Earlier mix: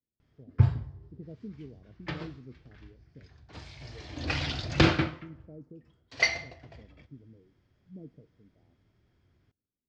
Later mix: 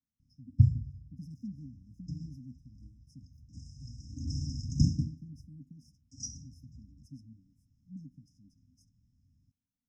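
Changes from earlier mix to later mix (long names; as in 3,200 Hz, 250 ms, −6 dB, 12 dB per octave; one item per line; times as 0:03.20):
speech: remove Gaussian smoothing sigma 22 samples
master: add linear-phase brick-wall band-stop 290–5,000 Hz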